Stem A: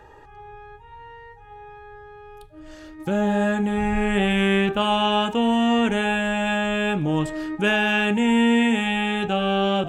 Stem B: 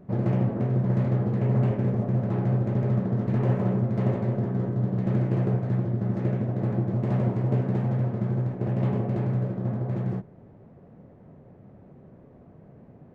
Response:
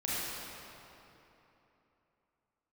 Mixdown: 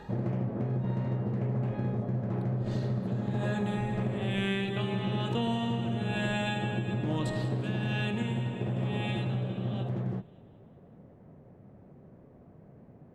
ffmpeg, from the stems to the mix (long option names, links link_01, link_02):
-filter_complex "[0:a]equalizer=frequency=4000:width=4.7:gain=14,aeval=exprs='val(0)*pow(10,-20*(0.5-0.5*cos(2*PI*1.1*n/s))/20)':channel_layout=same,volume=-2.5dB,afade=type=out:start_time=7.87:duration=0.33:silence=0.298538,asplit=3[link_01][link_02][link_03];[link_02]volume=-13.5dB[link_04];[link_03]volume=-15dB[link_05];[1:a]volume=-3.5dB[link_06];[2:a]atrim=start_sample=2205[link_07];[link_04][link_07]afir=irnorm=-1:irlink=0[link_08];[link_05]aecho=0:1:191|382|573|764|955|1146|1337|1528|1719:1|0.57|0.325|0.185|0.106|0.0602|0.0343|0.0195|0.0111[link_09];[link_01][link_06][link_08][link_09]amix=inputs=4:normalize=0,acompressor=threshold=-27dB:ratio=6"